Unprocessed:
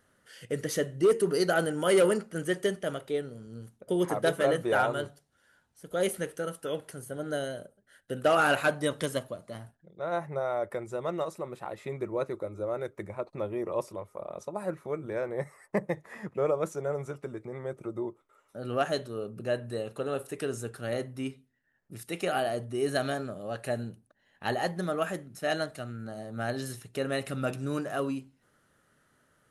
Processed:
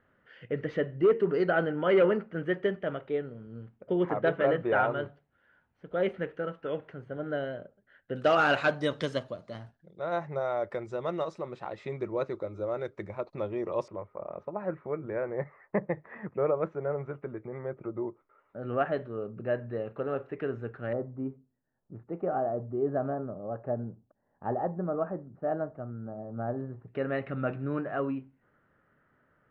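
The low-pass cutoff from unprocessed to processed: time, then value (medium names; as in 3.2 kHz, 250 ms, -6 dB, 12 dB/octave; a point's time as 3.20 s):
low-pass 24 dB/octave
2.6 kHz
from 8.16 s 5.5 kHz
from 13.88 s 2.2 kHz
from 20.93 s 1.1 kHz
from 26.88 s 2.2 kHz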